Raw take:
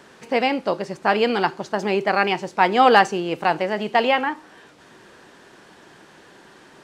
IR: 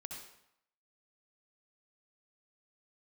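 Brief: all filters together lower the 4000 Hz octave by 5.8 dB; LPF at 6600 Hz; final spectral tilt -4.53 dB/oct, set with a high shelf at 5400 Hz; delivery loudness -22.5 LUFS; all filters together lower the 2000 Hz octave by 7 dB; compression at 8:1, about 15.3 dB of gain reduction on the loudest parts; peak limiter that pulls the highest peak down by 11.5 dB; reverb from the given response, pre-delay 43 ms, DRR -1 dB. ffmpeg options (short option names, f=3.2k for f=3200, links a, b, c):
-filter_complex "[0:a]lowpass=6.6k,equalizer=f=2k:t=o:g=-8.5,equalizer=f=4k:t=o:g=-5.5,highshelf=f=5.4k:g=5,acompressor=threshold=-27dB:ratio=8,alimiter=level_in=1.5dB:limit=-24dB:level=0:latency=1,volume=-1.5dB,asplit=2[a][b];[1:a]atrim=start_sample=2205,adelay=43[c];[b][c]afir=irnorm=-1:irlink=0,volume=4dB[d];[a][d]amix=inputs=2:normalize=0,volume=10dB"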